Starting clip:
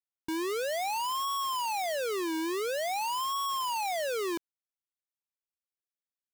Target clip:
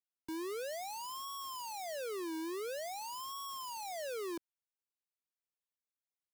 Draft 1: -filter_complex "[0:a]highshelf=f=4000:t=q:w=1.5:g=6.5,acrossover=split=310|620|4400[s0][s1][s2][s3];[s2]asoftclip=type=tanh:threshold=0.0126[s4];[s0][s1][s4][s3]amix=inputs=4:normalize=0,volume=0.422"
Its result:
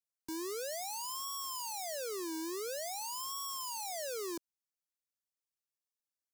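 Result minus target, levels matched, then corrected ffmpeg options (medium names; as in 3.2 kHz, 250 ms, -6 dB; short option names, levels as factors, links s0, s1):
8 kHz band +5.0 dB
-filter_complex "[0:a]acrossover=split=310|620|4400[s0][s1][s2][s3];[s2]asoftclip=type=tanh:threshold=0.0126[s4];[s0][s1][s4][s3]amix=inputs=4:normalize=0,volume=0.422"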